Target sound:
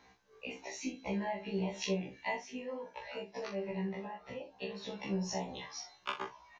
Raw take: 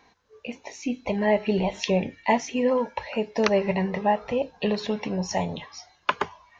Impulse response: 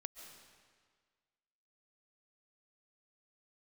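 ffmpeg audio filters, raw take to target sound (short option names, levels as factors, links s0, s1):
-filter_complex "[0:a]acompressor=threshold=0.0282:ratio=6,asettb=1/sr,asplit=3[s0][s1][s2];[s0]atrim=end=2.374[s3];[s1]atrim=start=2.37:end=4.89,asetpts=PTS-STARTPTS,afade=t=in:d=0.004:c=qsin,afade=t=out:st=2.516:d=0.004:c=qsin,flanger=delay=6.6:depth=3.1:regen=-48:speed=1.7:shape=sinusoidal[s4];[s2]atrim=start=4.886[s5];[s3][s4]acrossfade=d=0.004:c1=hsin:c2=qsin[s6];[s6][s5]acrossfade=d=0.004:c1=qsin:c2=hsin,aecho=1:1:26|44|66:0.531|0.335|0.2,afftfilt=real='re*1.73*eq(mod(b,3),0)':imag='im*1.73*eq(mod(b,3),0)':win_size=2048:overlap=0.75,volume=0.794"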